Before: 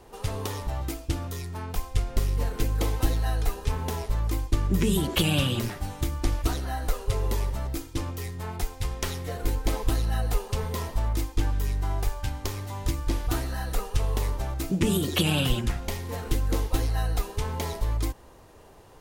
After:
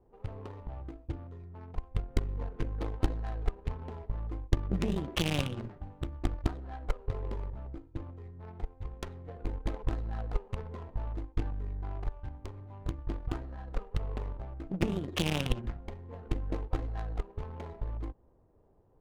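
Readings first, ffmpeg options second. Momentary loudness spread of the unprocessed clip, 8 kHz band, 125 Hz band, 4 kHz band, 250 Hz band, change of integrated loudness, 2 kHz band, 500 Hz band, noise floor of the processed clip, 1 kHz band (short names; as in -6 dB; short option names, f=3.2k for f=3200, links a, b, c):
9 LU, -15.0 dB, -8.0 dB, -10.0 dB, -7.5 dB, -8.5 dB, -8.5 dB, -7.5 dB, -61 dBFS, -9.5 dB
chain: -af "bandreject=f=5.4k:w=7,aeval=exprs='0.355*(cos(1*acos(clip(val(0)/0.355,-1,1)))-cos(1*PI/2))+0.0562*(cos(2*acos(clip(val(0)/0.355,-1,1)))-cos(2*PI/2))+0.0794*(cos(3*acos(clip(val(0)/0.355,-1,1)))-cos(3*PI/2))+0.00282*(cos(7*acos(clip(val(0)/0.355,-1,1)))-cos(7*PI/2))':c=same,adynamicsmooth=sensitivity=6:basefreq=620"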